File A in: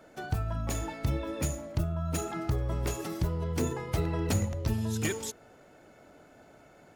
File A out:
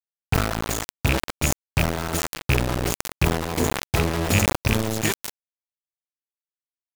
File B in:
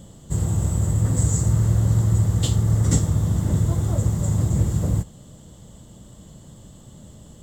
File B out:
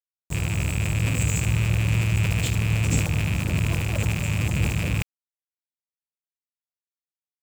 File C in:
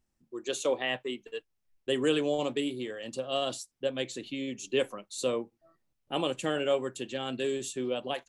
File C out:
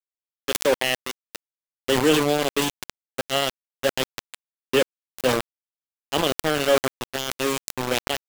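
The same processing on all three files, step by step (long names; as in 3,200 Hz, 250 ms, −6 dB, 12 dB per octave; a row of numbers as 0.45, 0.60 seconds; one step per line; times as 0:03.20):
loose part that buzzes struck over −24 dBFS, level −16 dBFS
centre clipping without the shift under −27.5 dBFS
level that may fall only so fast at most 58 dB per second
loudness normalisation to −24 LKFS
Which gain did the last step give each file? +7.5, −4.5, +8.5 decibels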